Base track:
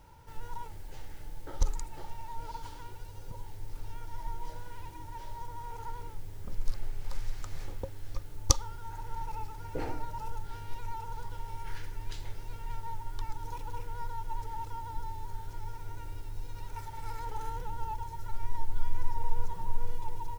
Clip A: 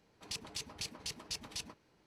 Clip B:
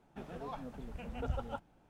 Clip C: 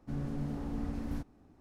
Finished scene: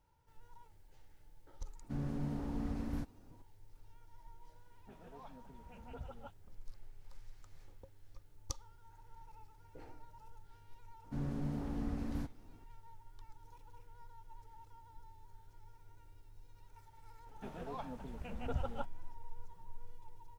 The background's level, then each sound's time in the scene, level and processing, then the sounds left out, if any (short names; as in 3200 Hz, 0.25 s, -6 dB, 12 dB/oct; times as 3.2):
base track -18.5 dB
1.82 add C -2 dB
4.71 add B -11 dB + dispersion highs, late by 44 ms, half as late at 2500 Hz
11.04 add C -2 dB
17.26 add B -1 dB
not used: A